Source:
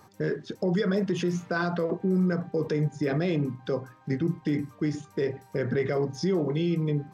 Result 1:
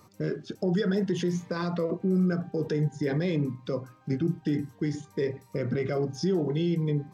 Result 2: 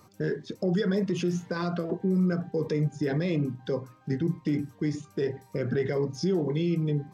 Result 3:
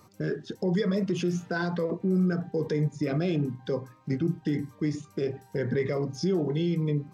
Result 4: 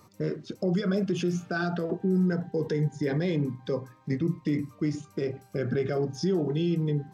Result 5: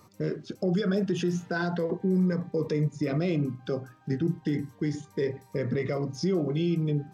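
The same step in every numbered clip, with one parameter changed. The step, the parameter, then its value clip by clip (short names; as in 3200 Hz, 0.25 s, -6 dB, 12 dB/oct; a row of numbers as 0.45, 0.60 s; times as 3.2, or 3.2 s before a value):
cascading phaser, rate: 0.54, 1.8, 1, 0.22, 0.34 Hz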